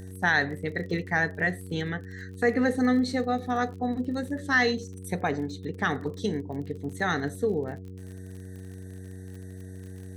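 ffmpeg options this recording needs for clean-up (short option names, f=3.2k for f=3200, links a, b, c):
-af "adeclick=t=4,bandreject=f=93.6:t=h:w=4,bandreject=f=187.2:t=h:w=4,bandreject=f=280.8:t=h:w=4,bandreject=f=374.4:t=h:w=4,bandreject=f=468:t=h:w=4"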